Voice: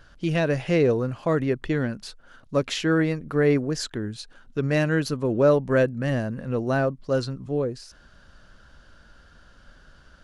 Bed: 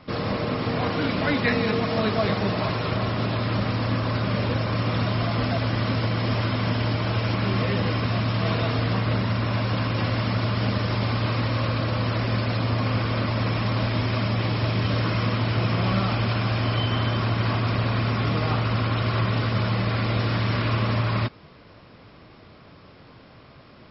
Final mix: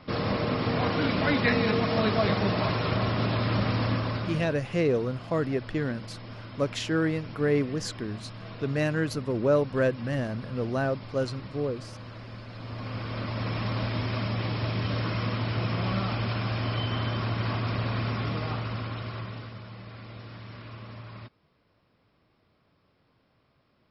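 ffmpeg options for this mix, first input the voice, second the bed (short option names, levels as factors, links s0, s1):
-filter_complex "[0:a]adelay=4050,volume=0.596[s0];[1:a]volume=3.55,afade=t=out:st=3.82:d=0.75:silence=0.149624,afade=t=in:st=12.51:d=1.11:silence=0.237137,afade=t=out:st=18.06:d=1.55:silence=0.199526[s1];[s0][s1]amix=inputs=2:normalize=0"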